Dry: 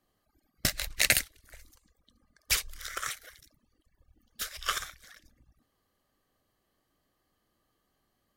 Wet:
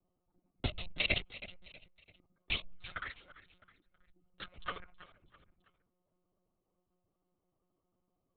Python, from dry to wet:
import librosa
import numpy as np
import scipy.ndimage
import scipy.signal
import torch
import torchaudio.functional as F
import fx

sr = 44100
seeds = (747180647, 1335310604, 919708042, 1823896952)

y = fx.wiener(x, sr, points=25)
y = fx.lowpass(y, sr, hz=2300.0, slope=24, at=(4.67, 5.08))
y = fx.env_flanger(y, sr, rest_ms=7.2, full_db=-32.0)
y = fx.echo_feedback(y, sr, ms=327, feedback_pct=40, wet_db=-16.5)
y = fx.lpc_monotone(y, sr, seeds[0], pitch_hz=180.0, order=16)